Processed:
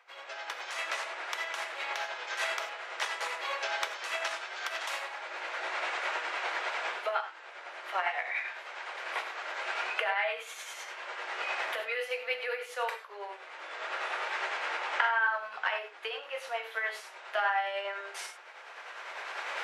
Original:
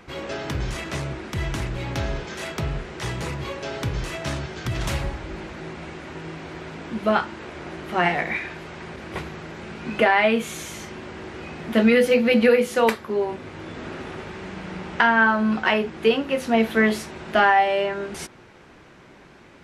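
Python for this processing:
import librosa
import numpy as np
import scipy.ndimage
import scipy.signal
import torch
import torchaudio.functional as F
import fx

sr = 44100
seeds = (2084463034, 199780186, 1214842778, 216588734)

y = fx.recorder_agc(x, sr, target_db=-7.5, rise_db_per_s=14.0, max_gain_db=30)
y = scipy.signal.sosfilt(scipy.signal.bessel(8, 930.0, 'highpass', norm='mag', fs=sr, output='sos'), y)
y = fx.high_shelf(y, sr, hz=4300.0, db=-9.5)
y = fx.rev_gated(y, sr, seeds[0], gate_ms=120, shape='flat', drr_db=5.5)
y = y * (1.0 - 0.36 / 2.0 + 0.36 / 2.0 * np.cos(2.0 * np.pi * 9.9 * (np.arange(len(y)) / sr)))
y = y * librosa.db_to_amplitude(-8.0)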